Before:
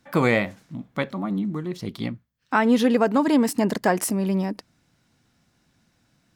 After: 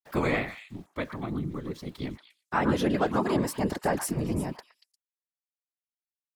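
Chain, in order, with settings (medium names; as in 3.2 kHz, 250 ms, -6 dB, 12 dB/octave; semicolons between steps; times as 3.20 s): small samples zeroed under -47.5 dBFS; whisper effect; repeats whose band climbs or falls 117 ms, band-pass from 1.3 kHz, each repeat 1.4 oct, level -6 dB; trim -6.5 dB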